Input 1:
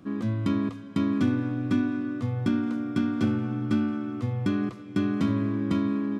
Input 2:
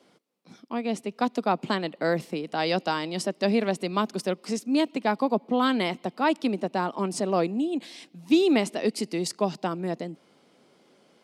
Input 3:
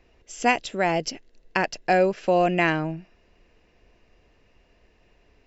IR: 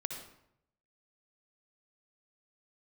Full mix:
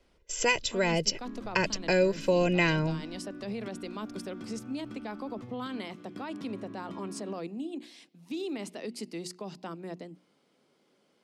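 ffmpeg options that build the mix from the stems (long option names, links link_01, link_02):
-filter_complex "[0:a]acompressor=threshold=-31dB:ratio=6,highpass=frequency=200:poles=1,adelay=1200,volume=-7dB[link_01];[1:a]equalizer=frequency=710:width_type=o:width=0.77:gain=-2.5,bandreject=frequency=60:width_type=h:width=6,bandreject=frequency=120:width_type=h:width=6,bandreject=frequency=180:width_type=h:width=6,bandreject=frequency=240:width_type=h:width=6,bandreject=frequency=300:width_type=h:width=6,bandreject=frequency=360:width_type=h:width=6,volume=-8.5dB[link_02];[2:a]agate=range=-15dB:threshold=-53dB:ratio=16:detection=peak,aecho=1:1:2:0.79,volume=2dB[link_03];[link_01][link_02]amix=inputs=2:normalize=0,alimiter=level_in=4dB:limit=-24dB:level=0:latency=1:release=34,volume=-4dB,volume=0dB[link_04];[link_03][link_04]amix=inputs=2:normalize=0,acrossover=split=280|3000[link_05][link_06][link_07];[link_06]acompressor=threshold=-35dB:ratio=2[link_08];[link_05][link_08][link_07]amix=inputs=3:normalize=0"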